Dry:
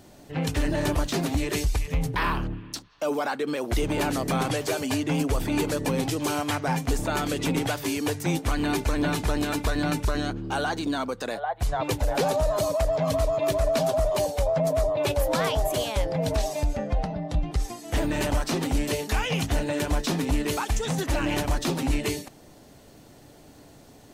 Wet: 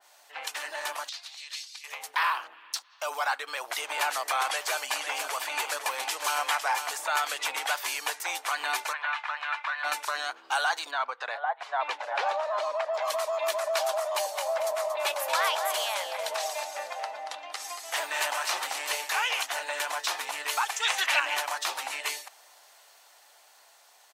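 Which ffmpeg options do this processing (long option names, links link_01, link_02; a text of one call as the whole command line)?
ffmpeg -i in.wav -filter_complex "[0:a]asettb=1/sr,asplit=3[link_01][link_02][link_03];[link_01]atrim=end=1.094[link_04];[link_02]atrim=start=1.09:end=1.84,asetpts=PTS-STARTPTS,afade=type=in:duration=0.004:curve=qsin,afade=type=out:start_time=0.746:duration=0.004:curve=qsin,bandpass=frequency=4300:width_type=q:width=2.2[link_05];[link_03]atrim=start=1.836[link_06];[link_04][link_05]acrossfade=duration=0.004:curve1=hsin:curve2=qsin[link_07];[link_07][link_06]acrossfade=duration=0.004:curve1=qsin:curve2=hsin,asettb=1/sr,asplit=3[link_08][link_09][link_10];[link_08]atrim=end=4.454[link_11];[link_09]atrim=start=4.45:end=6.88,asetpts=PTS-STARTPTS,afade=type=in:duration=0.004:curve=qsin,afade=type=out:start_time=2.426:duration=0.004:curve=qsin,aecho=1:1:505:0.398,atrim=end_sample=107163[link_12];[link_10]atrim=start=6.876[link_13];[link_11][link_12]acrossfade=duration=0.004:curve1=hsin:curve2=qsin[link_14];[link_14][link_13]acrossfade=duration=0.004:curve1=qsin:curve2=hsin,asplit=3[link_15][link_16][link_17];[link_15]afade=type=out:start_time=8.92:duration=0.02[link_18];[link_16]asuperpass=centerf=1600:order=4:qfactor=0.83,afade=type=in:start_time=8.92:duration=0.02,afade=type=out:start_time=9.83:duration=0.02[link_19];[link_17]afade=type=in:start_time=9.83:duration=0.02[link_20];[link_18][link_19][link_20]amix=inputs=3:normalize=0,asplit=3[link_21][link_22][link_23];[link_21]afade=type=out:start_time=10.9:duration=0.02[link_24];[link_22]lowpass=2900,afade=type=in:start_time=10.9:duration=0.02,afade=type=out:start_time=12.93:duration=0.02[link_25];[link_23]afade=type=in:start_time=12.93:duration=0.02[link_26];[link_24][link_25][link_26]amix=inputs=3:normalize=0,asplit=3[link_27][link_28][link_29];[link_27]afade=type=out:start_time=14.31:duration=0.02[link_30];[link_28]aecho=1:1:231|462|693:0.355|0.0958|0.0259,afade=type=in:start_time=14.31:duration=0.02,afade=type=out:start_time=19.41:duration=0.02[link_31];[link_29]afade=type=in:start_time=19.41:duration=0.02[link_32];[link_30][link_31][link_32]amix=inputs=3:normalize=0,asettb=1/sr,asplit=3[link_33][link_34][link_35];[link_33]atrim=end=20.804[link_36];[link_34]atrim=start=20.8:end=21.2,asetpts=PTS-STARTPTS,afade=type=in:duration=0.004:curve=qsin,afade=type=out:start_time=0.396:duration=0.004:curve=qsin,equalizer=frequency=2600:width_type=o:width=1.4:gain=11.5[link_37];[link_35]atrim=start=21.196[link_38];[link_36][link_37]acrossfade=duration=0.004:curve1=hsin:curve2=qsin[link_39];[link_39][link_38]acrossfade=duration=0.004:curve1=qsin:curve2=hsin,highpass=frequency=820:width=0.5412,highpass=frequency=820:width=1.3066,dynaudnorm=framelen=240:gausssize=21:maxgain=4dB,adynamicequalizer=threshold=0.01:dfrequency=2600:dqfactor=0.7:tfrequency=2600:tqfactor=0.7:attack=5:release=100:ratio=0.375:range=1.5:mode=cutabove:tftype=highshelf" out.wav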